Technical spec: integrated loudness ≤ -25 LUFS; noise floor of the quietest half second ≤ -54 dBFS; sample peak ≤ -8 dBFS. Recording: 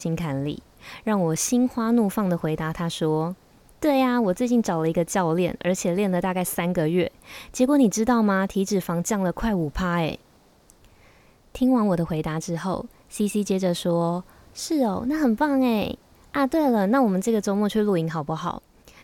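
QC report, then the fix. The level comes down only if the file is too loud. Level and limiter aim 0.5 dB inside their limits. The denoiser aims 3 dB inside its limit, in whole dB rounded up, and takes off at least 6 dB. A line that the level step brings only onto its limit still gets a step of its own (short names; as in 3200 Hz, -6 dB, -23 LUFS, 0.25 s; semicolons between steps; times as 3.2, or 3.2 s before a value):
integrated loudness -23.5 LUFS: fail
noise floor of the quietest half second -56 dBFS: OK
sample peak -9.0 dBFS: OK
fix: gain -2 dB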